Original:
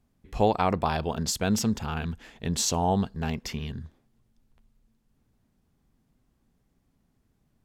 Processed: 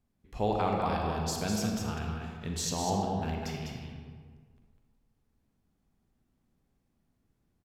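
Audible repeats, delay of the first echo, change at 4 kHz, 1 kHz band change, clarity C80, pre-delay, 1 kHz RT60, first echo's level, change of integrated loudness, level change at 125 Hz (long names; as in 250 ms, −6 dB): 1, 201 ms, −5.5 dB, −4.0 dB, 1.0 dB, 36 ms, 1.7 s, −5.5 dB, −4.5 dB, −4.0 dB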